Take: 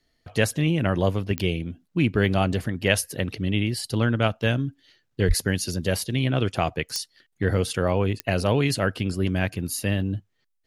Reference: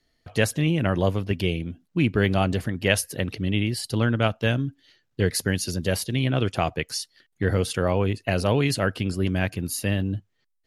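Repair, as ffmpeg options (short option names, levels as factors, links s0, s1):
-filter_complex "[0:a]adeclick=t=4,asplit=3[s0][s1][s2];[s0]afade=t=out:st=5.27:d=0.02[s3];[s1]highpass=f=140:w=0.5412,highpass=f=140:w=1.3066,afade=t=in:st=5.27:d=0.02,afade=t=out:st=5.39:d=0.02[s4];[s2]afade=t=in:st=5.39:d=0.02[s5];[s3][s4][s5]amix=inputs=3:normalize=0"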